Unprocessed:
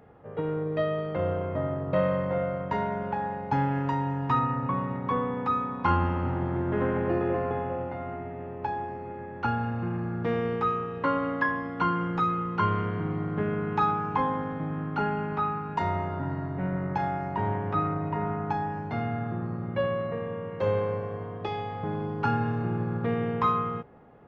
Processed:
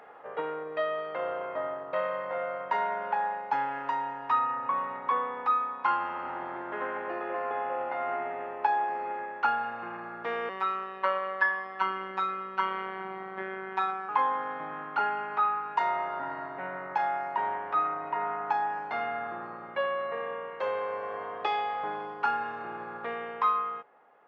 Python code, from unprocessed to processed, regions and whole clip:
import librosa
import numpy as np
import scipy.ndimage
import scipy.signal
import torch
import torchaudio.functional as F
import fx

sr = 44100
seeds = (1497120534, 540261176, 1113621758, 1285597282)

y = fx.chain(x, sr, fx.robotise(hz=190.0),
    fx.echo_feedback(ms=113, feedback_pct=57, wet_db=-21.5), at=(10.49, 14.09))
y = fx.rider(y, sr, range_db=10, speed_s=0.5)
y = scipy.signal.sosfilt(scipy.signal.butter(2, 870.0, 'highpass', fs=sr, output='sos'), y)
y = fx.high_shelf(y, sr, hz=3500.0, db=-10.5)
y = y * librosa.db_to_amplitude(5.5)